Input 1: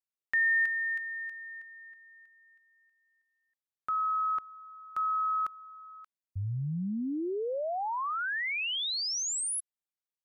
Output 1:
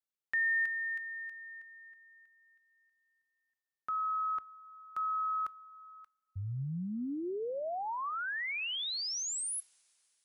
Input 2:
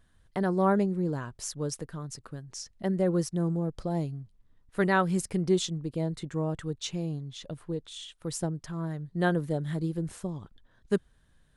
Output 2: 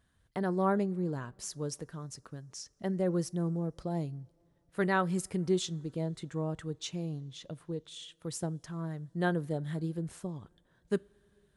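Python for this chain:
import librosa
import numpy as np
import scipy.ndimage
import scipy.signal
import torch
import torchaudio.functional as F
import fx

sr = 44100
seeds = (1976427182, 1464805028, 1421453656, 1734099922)

y = scipy.signal.sosfilt(scipy.signal.butter(2, 46.0, 'highpass', fs=sr, output='sos'), x)
y = fx.rev_double_slope(y, sr, seeds[0], early_s=0.25, late_s=4.0, knee_db=-22, drr_db=20.0)
y = F.gain(torch.from_numpy(y), -4.0).numpy()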